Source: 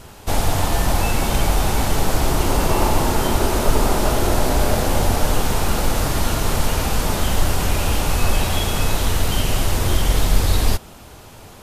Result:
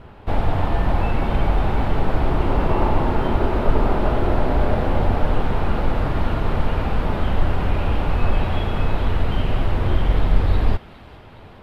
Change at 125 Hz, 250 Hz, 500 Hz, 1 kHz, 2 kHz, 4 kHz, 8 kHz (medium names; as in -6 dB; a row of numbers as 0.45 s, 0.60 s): 0.0 dB, -0.5 dB, -1.5 dB, -2.0 dB, -4.5 dB, -11.5 dB, under -25 dB